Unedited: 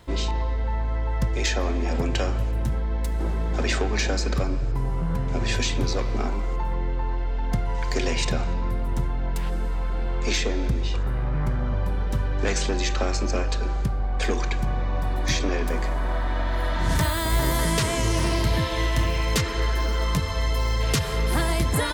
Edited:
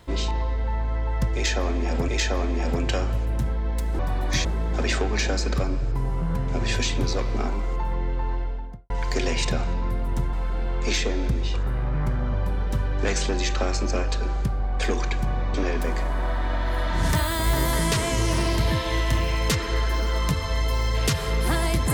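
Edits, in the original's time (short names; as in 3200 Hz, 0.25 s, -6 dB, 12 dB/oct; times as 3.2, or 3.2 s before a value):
1.34–2.08 loop, 2 plays
7.11–7.7 studio fade out
9.13–9.73 cut
14.94–15.4 move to 3.25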